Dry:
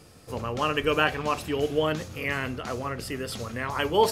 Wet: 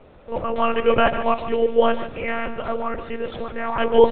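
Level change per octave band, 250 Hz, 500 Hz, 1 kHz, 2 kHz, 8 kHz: +4.5 dB, +8.0 dB, +5.5 dB, +1.0 dB, under -40 dB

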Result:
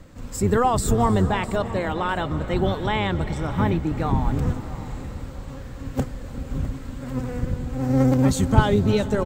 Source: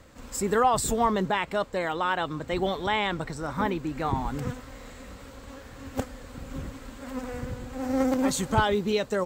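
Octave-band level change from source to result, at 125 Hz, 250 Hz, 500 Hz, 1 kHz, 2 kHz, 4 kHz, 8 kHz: +13.0 dB, +6.5 dB, +3.5 dB, +1.5 dB, +0.5 dB, +0.5 dB, 0.0 dB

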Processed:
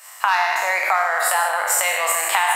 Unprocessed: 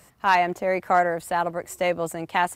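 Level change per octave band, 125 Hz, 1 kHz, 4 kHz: under -35 dB, +3.5 dB, +10.0 dB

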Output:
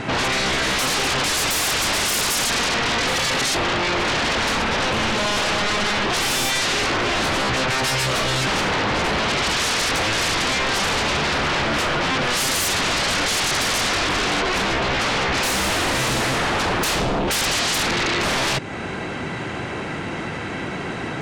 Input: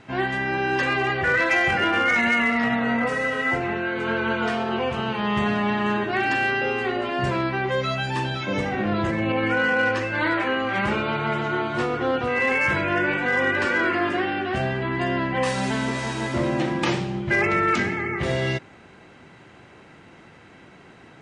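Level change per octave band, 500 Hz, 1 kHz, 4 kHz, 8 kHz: 0.0 dB, +2.5 dB, +13.0 dB, +21.0 dB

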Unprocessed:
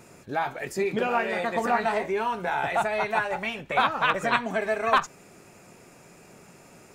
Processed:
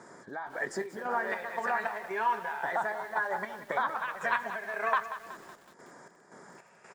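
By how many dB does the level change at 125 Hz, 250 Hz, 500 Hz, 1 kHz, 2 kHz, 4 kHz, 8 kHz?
-14.0 dB, -12.0 dB, -9.0 dB, -5.5 dB, -4.5 dB, -14.0 dB, no reading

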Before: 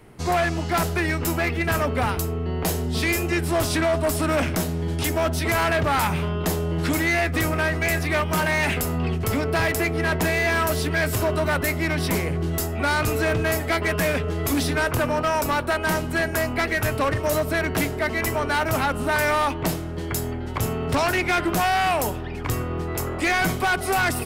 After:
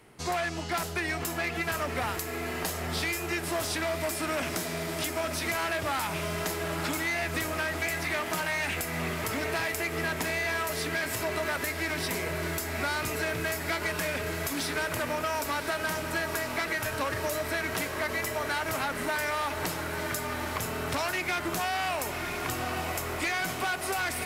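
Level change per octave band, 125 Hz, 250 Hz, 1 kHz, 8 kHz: -12.5 dB, -10.5 dB, -7.5 dB, -4.0 dB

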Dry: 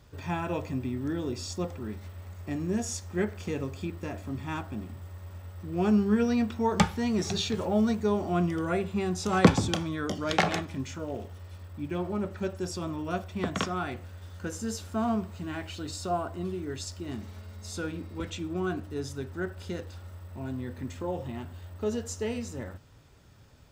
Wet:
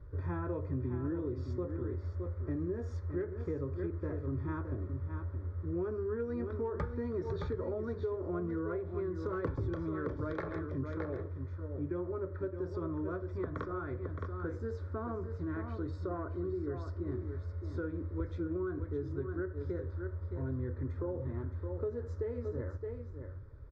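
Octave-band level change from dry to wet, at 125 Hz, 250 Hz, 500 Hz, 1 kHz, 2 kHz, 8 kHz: -2.5 dB, -9.0 dB, -4.5 dB, -12.5 dB, -12.5 dB, under -30 dB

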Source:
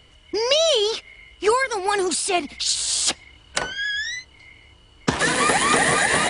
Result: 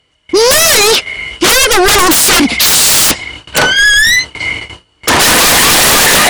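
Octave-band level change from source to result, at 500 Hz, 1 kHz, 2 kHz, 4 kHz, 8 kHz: +9.5 dB, +10.5 dB, +14.5 dB, +15.0 dB, +16.5 dB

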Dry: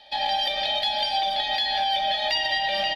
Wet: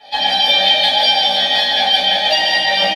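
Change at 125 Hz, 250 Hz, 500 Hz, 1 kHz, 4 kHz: no reading, +15.0 dB, +10.0 dB, +7.0 dB, +12.5 dB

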